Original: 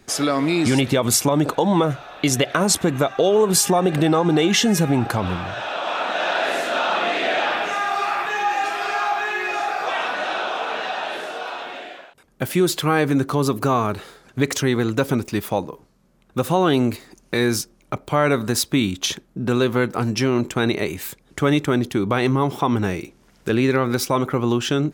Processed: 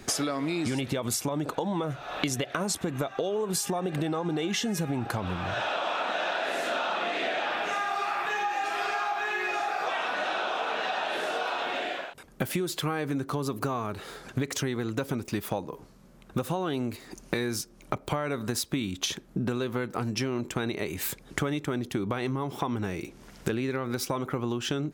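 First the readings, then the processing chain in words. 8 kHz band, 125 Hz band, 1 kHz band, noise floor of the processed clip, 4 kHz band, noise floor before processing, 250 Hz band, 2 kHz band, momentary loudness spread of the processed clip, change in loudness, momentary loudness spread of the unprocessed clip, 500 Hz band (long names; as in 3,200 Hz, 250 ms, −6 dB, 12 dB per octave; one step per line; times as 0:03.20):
−10.0 dB, −10.0 dB, −8.0 dB, −52 dBFS, −8.5 dB, −56 dBFS, −10.5 dB, −7.5 dB, 5 LU, −9.5 dB, 10 LU, −10.5 dB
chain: downward compressor 12 to 1, threshold −32 dBFS, peak gain reduction 19.5 dB
level +5.5 dB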